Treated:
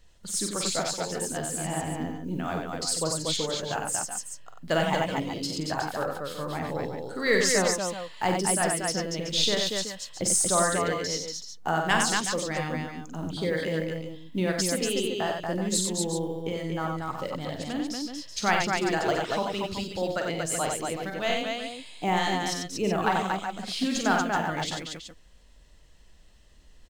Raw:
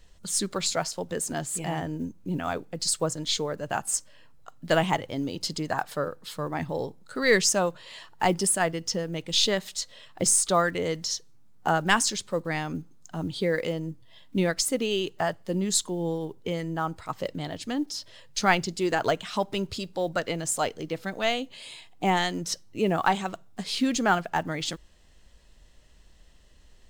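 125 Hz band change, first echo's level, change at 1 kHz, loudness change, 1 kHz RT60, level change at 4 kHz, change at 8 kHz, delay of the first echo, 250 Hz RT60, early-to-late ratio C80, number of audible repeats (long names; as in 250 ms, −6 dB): −0.5 dB, −8.0 dB, 0.0 dB, −0.5 dB, no reverb audible, 0.0 dB, 0.0 dB, 44 ms, no reverb audible, no reverb audible, 4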